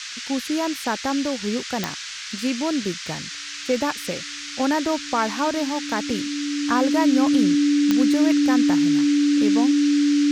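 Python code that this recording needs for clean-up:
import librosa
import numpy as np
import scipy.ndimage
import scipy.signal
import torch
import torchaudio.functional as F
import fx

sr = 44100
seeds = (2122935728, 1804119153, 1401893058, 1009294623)

y = fx.fix_declick_ar(x, sr, threshold=10.0)
y = fx.notch(y, sr, hz=290.0, q=30.0)
y = fx.noise_reduce(y, sr, print_start_s=3.19, print_end_s=3.69, reduce_db=30.0)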